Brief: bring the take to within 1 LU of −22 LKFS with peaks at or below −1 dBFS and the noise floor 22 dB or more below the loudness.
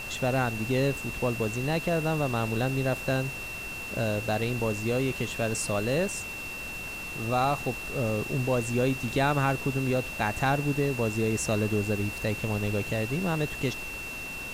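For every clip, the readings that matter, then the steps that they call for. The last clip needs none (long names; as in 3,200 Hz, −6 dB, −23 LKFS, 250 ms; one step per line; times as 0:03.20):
interfering tone 2,700 Hz; level of the tone −36 dBFS; background noise floor −37 dBFS; target noise floor −51 dBFS; integrated loudness −28.5 LKFS; sample peak −13.0 dBFS; target loudness −22.0 LKFS
→ notch filter 2,700 Hz, Q 30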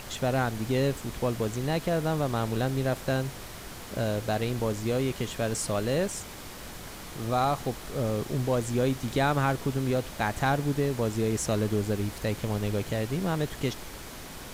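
interfering tone none found; background noise floor −42 dBFS; target noise floor −51 dBFS
→ noise reduction from a noise print 9 dB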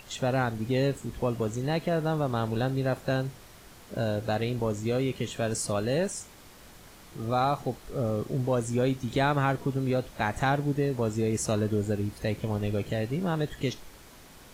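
background noise floor −51 dBFS; integrated loudness −29.0 LKFS; sample peak −13.5 dBFS; target loudness −22.0 LKFS
→ level +7 dB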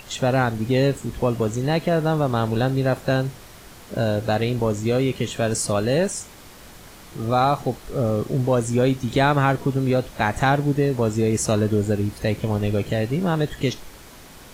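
integrated loudness −22.0 LKFS; sample peak −6.5 dBFS; background noise floor −44 dBFS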